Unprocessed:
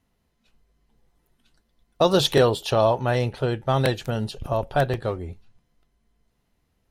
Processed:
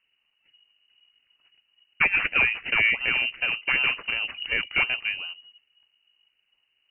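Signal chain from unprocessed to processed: 2.04–2.57 low shelf 180 Hz -10.5 dB; decimation with a swept rate 17×, swing 100% 2.7 Hz; inverted band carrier 2900 Hz; gain -2.5 dB

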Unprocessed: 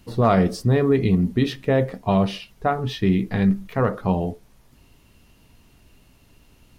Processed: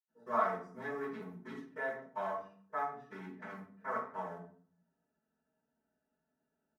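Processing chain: Wiener smoothing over 41 samples; HPF 1000 Hz 12 dB/oct; band shelf 3400 Hz -14.5 dB 1.2 oct; comb 4.6 ms, depth 95%; reverb RT60 0.50 s, pre-delay 76 ms, DRR -60 dB; gain -2 dB

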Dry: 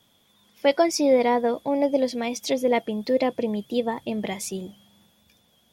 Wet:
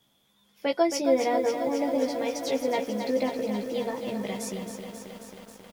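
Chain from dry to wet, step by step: doubler 15 ms -4 dB; lo-fi delay 0.269 s, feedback 80%, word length 7-bit, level -7.5 dB; gain -6.5 dB

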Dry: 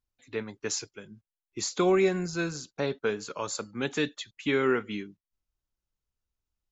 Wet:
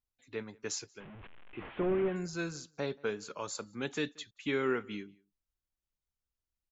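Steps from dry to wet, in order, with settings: 1–2.16 delta modulation 16 kbps, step -37.5 dBFS; outdoor echo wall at 31 m, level -26 dB; gain -6 dB

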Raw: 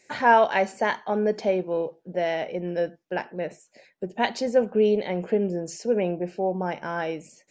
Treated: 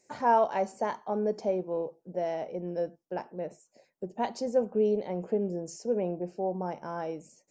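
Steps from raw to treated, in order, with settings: band shelf 2500 Hz -10.5 dB; gain -5.5 dB

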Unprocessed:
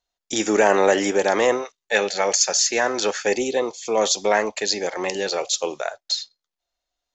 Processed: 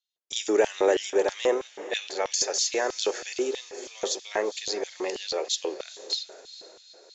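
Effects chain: diffused feedback echo 0.451 s, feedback 54%, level -15 dB; LFO high-pass square 3.1 Hz 380–3300 Hz; gain -9 dB

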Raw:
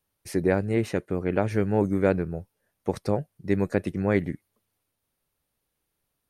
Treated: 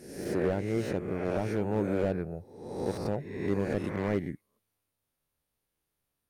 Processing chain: spectral swells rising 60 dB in 0.84 s; pre-echo 0.171 s -14 dB; slew limiter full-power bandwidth 78 Hz; gain -7 dB

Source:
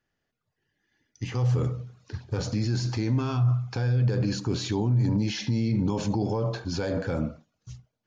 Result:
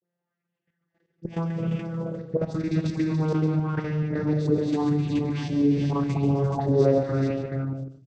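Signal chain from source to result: vocoder on a gliding note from F3, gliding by -5 st; dispersion highs, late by 78 ms, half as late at 1600 Hz; level quantiser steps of 15 dB; tapped delay 0.136/0.182/0.261/0.346/0.427/0.576 s -8.5/-15/-14.5/-10.5/-4/-14.5 dB; on a send at -15 dB: reverb RT60 0.60 s, pre-delay 4 ms; on the sum: LFO bell 0.88 Hz 420–2800 Hz +11 dB; gain +4 dB

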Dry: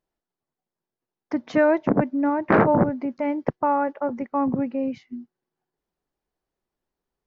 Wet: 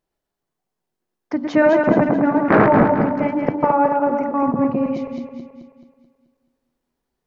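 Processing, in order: regenerating reverse delay 0.108 s, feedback 67%, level -3.5 dB; de-hum 96.1 Hz, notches 16; gain +3.5 dB

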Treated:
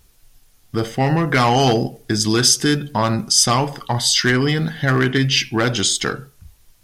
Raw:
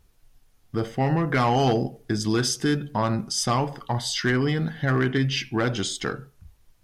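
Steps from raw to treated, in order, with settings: high shelf 2700 Hz +9 dB; gain +5 dB

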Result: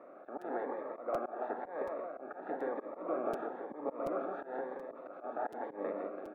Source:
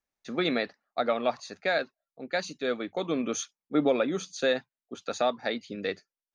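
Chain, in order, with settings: per-bin compression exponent 0.4; HPF 420 Hz 12 dB/oct; compressor 12:1, threshold -30 dBFS, peak gain reduction 13 dB; reverse bouncing-ball echo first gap 0.16 s, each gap 1.1×, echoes 5; reverb RT60 1.8 s, pre-delay 7 ms, DRR 15.5 dB; dynamic EQ 910 Hz, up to +7 dB, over -48 dBFS, Q 1.7; LPF 1300 Hz 24 dB/oct; auto swell 0.148 s; crackling interface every 0.73 s, samples 256, repeat, from 0.41; cascading phaser rising 1 Hz; gain -2 dB

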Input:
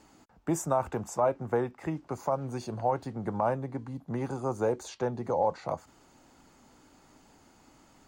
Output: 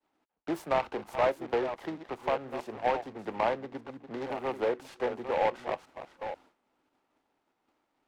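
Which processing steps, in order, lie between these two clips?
reverse delay 0.488 s, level -10 dB; expander -48 dBFS; three-band isolator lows -19 dB, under 270 Hz, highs -15 dB, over 3500 Hz; noise-modulated delay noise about 1200 Hz, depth 0.063 ms

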